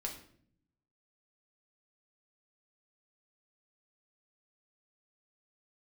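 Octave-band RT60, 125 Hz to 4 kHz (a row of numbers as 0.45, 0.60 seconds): 1.2, 1.1, 0.65, 0.50, 0.50, 0.45 seconds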